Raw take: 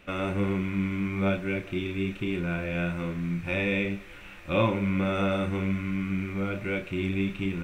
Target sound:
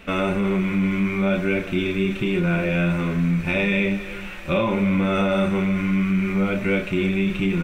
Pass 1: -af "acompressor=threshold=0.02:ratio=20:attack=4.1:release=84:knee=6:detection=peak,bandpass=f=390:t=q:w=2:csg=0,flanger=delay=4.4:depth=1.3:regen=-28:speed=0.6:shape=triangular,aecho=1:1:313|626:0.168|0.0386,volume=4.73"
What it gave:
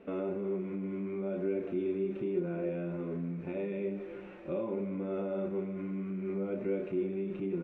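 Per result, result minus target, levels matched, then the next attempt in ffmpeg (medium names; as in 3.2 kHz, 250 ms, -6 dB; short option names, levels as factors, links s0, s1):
compression: peak gain reduction +8 dB; 500 Hz band +5.0 dB
-af "acompressor=threshold=0.0531:ratio=20:attack=4.1:release=84:knee=6:detection=peak,bandpass=f=390:t=q:w=2:csg=0,flanger=delay=4.4:depth=1.3:regen=-28:speed=0.6:shape=triangular,aecho=1:1:313|626:0.168|0.0386,volume=4.73"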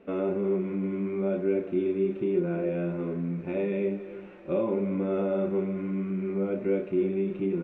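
500 Hz band +5.0 dB
-af "acompressor=threshold=0.0531:ratio=20:attack=4.1:release=84:knee=6:detection=peak,flanger=delay=4.4:depth=1.3:regen=-28:speed=0.6:shape=triangular,aecho=1:1:313|626:0.168|0.0386,volume=4.73"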